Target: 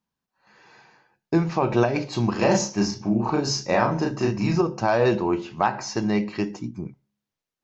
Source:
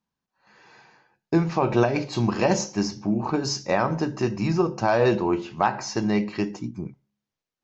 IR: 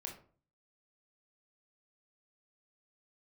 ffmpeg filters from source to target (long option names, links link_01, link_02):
-filter_complex "[0:a]asettb=1/sr,asplit=3[link_01][link_02][link_03];[link_01]atrim=end=2.384[link_04];[link_02]atrim=start=2.38:end=4.61,asetpts=PTS-STARTPTS,afade=type=in:duration=0.004:curve=qsin,afade=type=out:start_time=2.226:duration=0.004:curve=qsin,asplit=2[link_05][link_06];[link_06]adelay=35,volume=-2.5dB[link_07];[link_05][link_07]amix=inputs=2:normalize=0,atrim=end_sample=98343[link_08];[link_03]atrim=start=4.606[link_09];[link_04][link_08]acrossfade=duration=0.004:curve1=hsin:curve2=qsin[link_10];[link_10][link_09]acrossfade=duration=0.004:curve1=qsin:curve2=hsin"